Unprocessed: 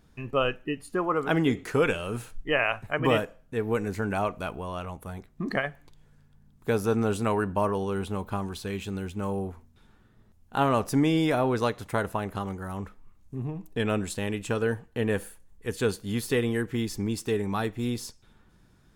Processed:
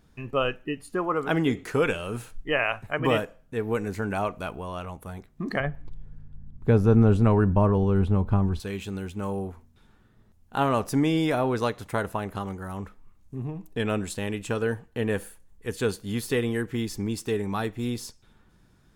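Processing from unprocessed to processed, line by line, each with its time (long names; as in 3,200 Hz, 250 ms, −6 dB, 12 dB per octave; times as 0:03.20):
0:05.60–0:08.60: RIAA equalisation playback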